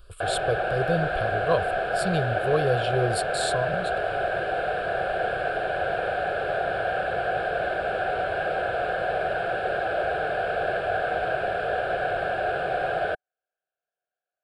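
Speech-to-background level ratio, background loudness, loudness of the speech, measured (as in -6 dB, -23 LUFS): -2.0 dB, -26.5 LUFS, -28.5 LUFS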